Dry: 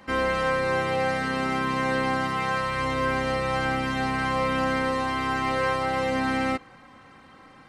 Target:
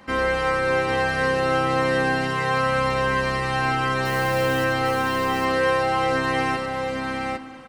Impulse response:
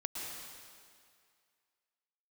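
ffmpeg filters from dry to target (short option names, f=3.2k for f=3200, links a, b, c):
-filter_complex "[0:a]asettb=1/sr,asplit=3[a][b][c];[a]atrim=end=4.054[d];[b]atrim=start=4.05:end=4.65,asetpts=PTS-STARTPTS,afade=t=in:d=0.004:c=qsin,afade=t=out:st=0.596:d=0.004:c=qsin,acrusher=bits=7:dc=4:mix=0:aa=0.000001[e];[c]atrim=start=4.646[f];[d][e]acrossfade=d=0.004:c1=hsin:c2=qsin[g];[g][f]acrossfade=d=0.004:c1=qsin:c2=hsin,aecho=1:1:94|802:0.376|0.668,asplit=2[h][i];[1:a]atrim=start_sample=2205[j];[i][j]afir=irnorm=-1:irlink=0,volume=-10.5dB[k];[h][k]amix=inputs=2:normalize=0"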